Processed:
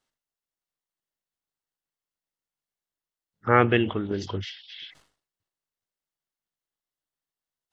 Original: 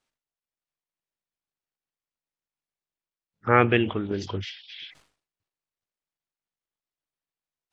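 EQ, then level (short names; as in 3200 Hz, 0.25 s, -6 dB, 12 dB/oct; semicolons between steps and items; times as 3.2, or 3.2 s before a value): notch 2400 Hz, Q 9.4; 0.0 dB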